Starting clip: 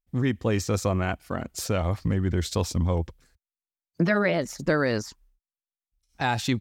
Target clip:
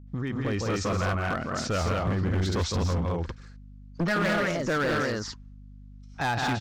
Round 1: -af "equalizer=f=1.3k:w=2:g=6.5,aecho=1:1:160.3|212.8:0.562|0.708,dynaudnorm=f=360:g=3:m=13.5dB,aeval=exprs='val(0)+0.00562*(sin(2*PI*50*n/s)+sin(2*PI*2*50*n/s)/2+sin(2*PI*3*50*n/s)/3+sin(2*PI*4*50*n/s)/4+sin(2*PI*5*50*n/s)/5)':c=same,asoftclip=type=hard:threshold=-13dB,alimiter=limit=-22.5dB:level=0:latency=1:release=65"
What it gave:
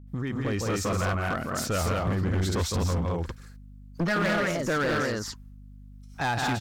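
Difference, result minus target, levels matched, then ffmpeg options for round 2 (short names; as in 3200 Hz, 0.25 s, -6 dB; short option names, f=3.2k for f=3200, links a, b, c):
8000 Hz band +3.5 dB
-af "lowpass=f=6.3k:w=0.5412,lowpass=f=6.3k:w=1.3066,equalizer=f=1.3k:w=2:g=6.5,aecho=1:1:160.3|212.8:0.562|0.708,dynaudnorm=f=360:g=3:m=13.5dB,aeval=exprs='val(0)+0.00562*(sin(2*PI*50*n/s)+sin(2*PI*2*50*n/s)/2+sin(2*PI*3*50*n/s)/3+sin(2*PI*4*50*n/s)/4+sin(2*PI*5*50*n/s)/5)':c=same,asoftclip=type=hard:threshold=-13dB,alimiter=limit=-22.5dB:level=0:latency=1:release=65"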